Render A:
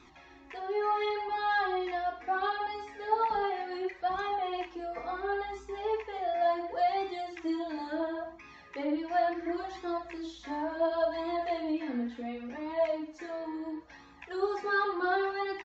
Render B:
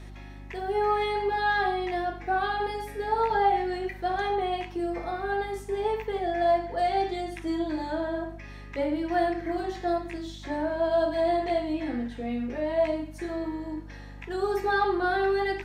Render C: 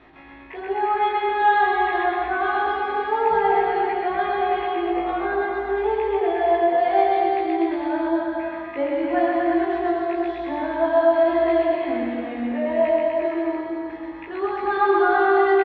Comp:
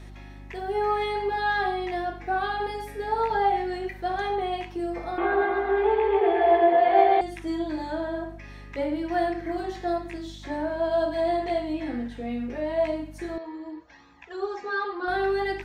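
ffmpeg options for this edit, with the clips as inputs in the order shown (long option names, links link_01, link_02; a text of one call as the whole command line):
ffmpeg -i take0.wav -i take1.wav -i take2.wav -filter_complex "[1:a]asplit=3[link_01][link_02][link_03];[link_01]atrim=end=5.182[link_04];[2:a]atrim=start=5.178:end=7.212[link_05];[link_02]atrim=start=7.208:end=13.382[link_06];[0:a]atrim=start=13.378:end=15.082[link_07];[link_03]atrim=start=15.078[link_08];[link_04][link_05]acrossfade=duration=0.004:curve1=hsin:curve2=hsin[link_09];[link_09][link_06]acrossfade=duration=0.004:curve1=hsin:curve2=hsin[link_10];[link_10][link_07]acrossfade=duration=0.004:curve1=hsin:curve2=hsin[link_11];[link_11][link_08]acrossfade=duration=0.004:curve1=hsin:curve2=hsin" out.wav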